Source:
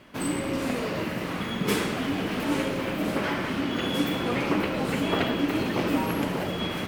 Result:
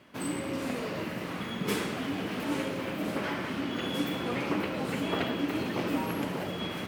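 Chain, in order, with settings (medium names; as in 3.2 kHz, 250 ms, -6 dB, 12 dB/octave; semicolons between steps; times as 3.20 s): high-pass 75 Hz; trim -5 dB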